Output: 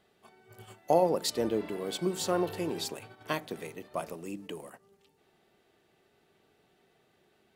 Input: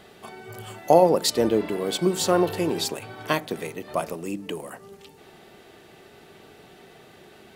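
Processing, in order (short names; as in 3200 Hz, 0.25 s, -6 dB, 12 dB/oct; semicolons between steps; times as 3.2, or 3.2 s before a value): gate -38 dBFS, range -10 dB; gain -8.5 dB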